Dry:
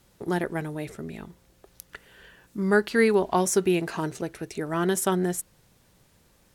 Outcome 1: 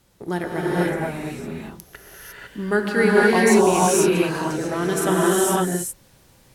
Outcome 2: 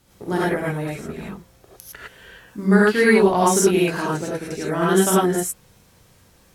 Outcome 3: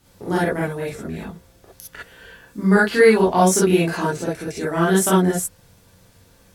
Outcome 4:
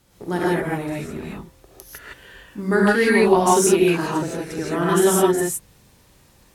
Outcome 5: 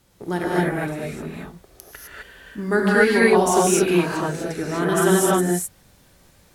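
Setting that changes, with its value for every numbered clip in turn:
reverb whose tail is shaped and stops, gate: 530, 130, 80, 190, 280 milliseconds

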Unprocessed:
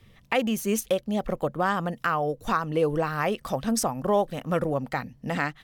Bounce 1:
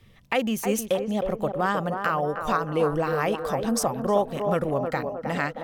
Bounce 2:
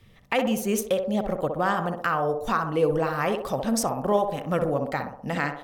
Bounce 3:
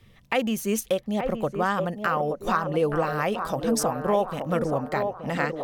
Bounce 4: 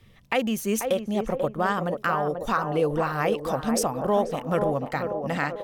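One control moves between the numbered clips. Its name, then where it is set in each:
feedback echo with a band-pass in the loop, delay time: 313, 63, 875, 488 milliseconds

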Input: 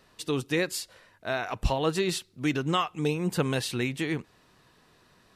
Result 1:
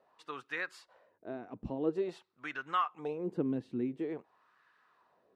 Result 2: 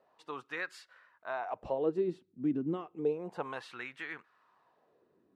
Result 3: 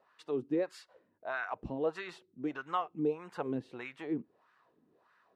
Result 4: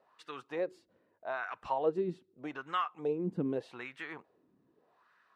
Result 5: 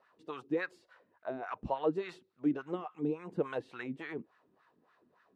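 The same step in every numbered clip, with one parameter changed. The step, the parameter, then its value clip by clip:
LFO wah, speed: 0.48, 0.31, 1.6, 0.82, 3.5 Hertz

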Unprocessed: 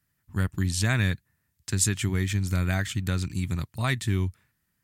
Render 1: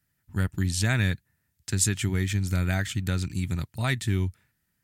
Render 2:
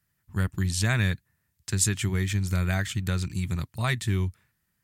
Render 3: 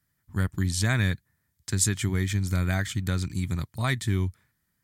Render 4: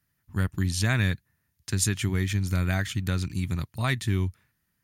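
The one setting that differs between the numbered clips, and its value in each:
notch filter, centre frequency: 1,100, 270, 2,700, 7,800 Hertz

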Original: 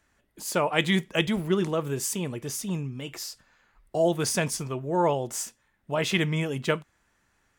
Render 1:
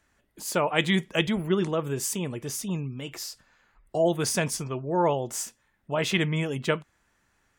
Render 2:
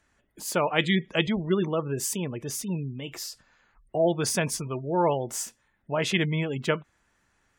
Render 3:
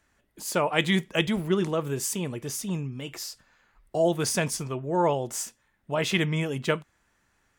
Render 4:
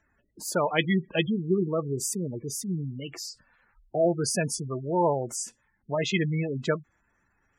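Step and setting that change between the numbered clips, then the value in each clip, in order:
gate on every frequency bin, under each frame's peak: −45, −30, −60, −15 decibels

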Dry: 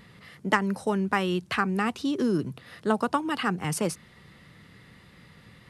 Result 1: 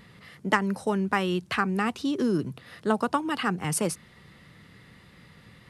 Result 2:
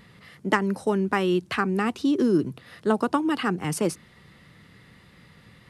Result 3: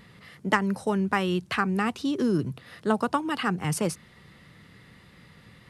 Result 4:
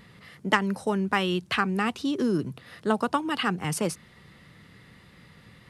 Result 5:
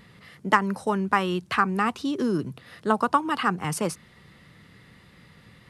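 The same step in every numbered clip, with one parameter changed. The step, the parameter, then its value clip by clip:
dynamic equaliser, frequency: 9,900, 330, 110, 3,300, 1,100 Hertz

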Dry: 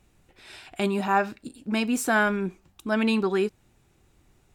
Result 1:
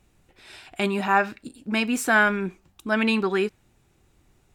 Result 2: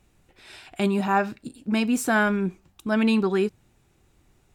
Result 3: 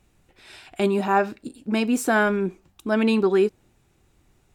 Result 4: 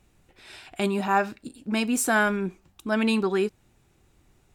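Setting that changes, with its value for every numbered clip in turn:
dynamic equaliser, frequency: 2,000, 130, 390, 9,500 Hertz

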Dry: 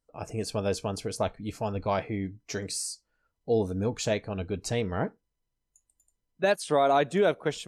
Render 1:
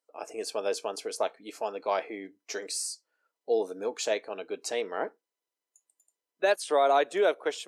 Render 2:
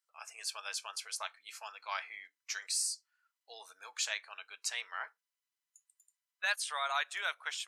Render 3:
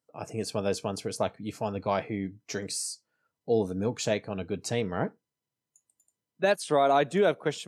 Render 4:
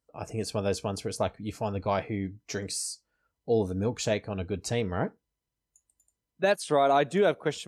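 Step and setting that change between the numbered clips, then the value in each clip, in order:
high-pass filter, corner frequency: 350, 1,200, 110, 42 Hertz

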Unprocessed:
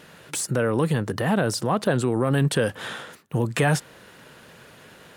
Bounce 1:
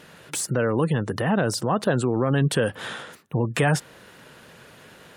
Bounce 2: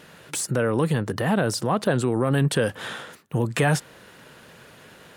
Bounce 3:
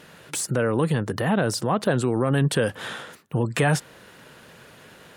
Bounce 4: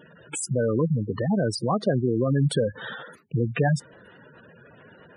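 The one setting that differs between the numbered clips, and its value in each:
gate on every frequency bin, under each frame's peak: −35, −60, −45, −10 decibels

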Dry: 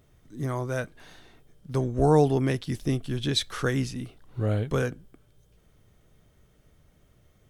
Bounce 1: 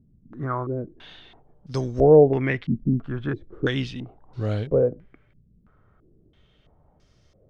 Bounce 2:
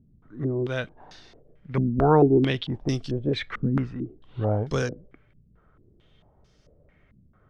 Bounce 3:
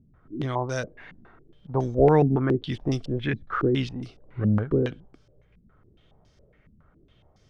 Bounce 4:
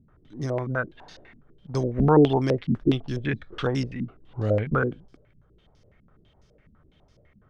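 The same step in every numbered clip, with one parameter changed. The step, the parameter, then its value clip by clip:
low-pass on a step sequencer, speed: 3, 4.5, 7.2, 12 Hertz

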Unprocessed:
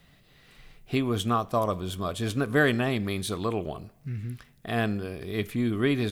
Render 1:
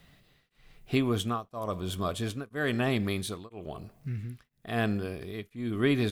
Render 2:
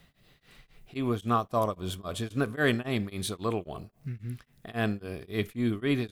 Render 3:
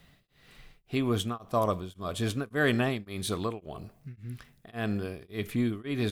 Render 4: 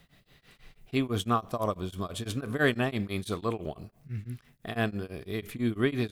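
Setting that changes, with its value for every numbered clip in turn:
tremolo along a rectified sine, nulls at: 1, 3.7, 1.8, 6 Hertz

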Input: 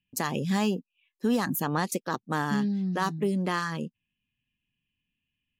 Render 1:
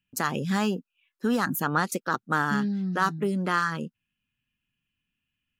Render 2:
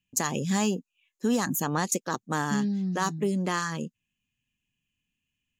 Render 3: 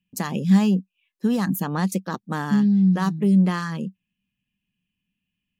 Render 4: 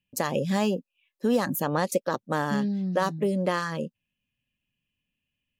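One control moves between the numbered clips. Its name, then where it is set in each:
parametric band, centre frequency: 1,400, 6,800, 190, 560 Hertz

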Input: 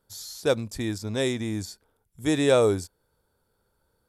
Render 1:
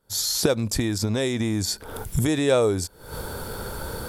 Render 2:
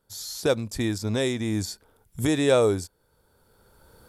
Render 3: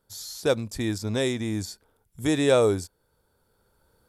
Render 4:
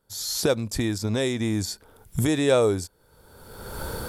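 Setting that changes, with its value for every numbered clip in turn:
camcorder AGC, rising by: 91, 14, 5.1, 36 dB per second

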